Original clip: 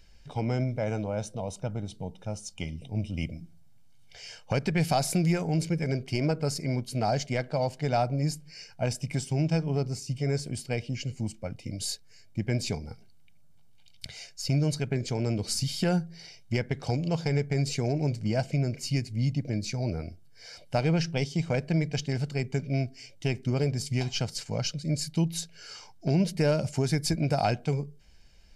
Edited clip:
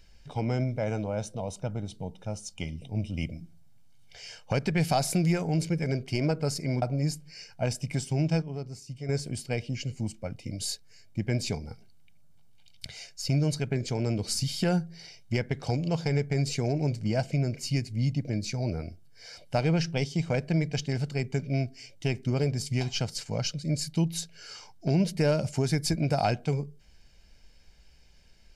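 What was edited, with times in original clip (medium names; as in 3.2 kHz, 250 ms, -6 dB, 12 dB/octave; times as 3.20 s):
6.82–8.02 s: delete
9.62–10.29 s: gain -8 dB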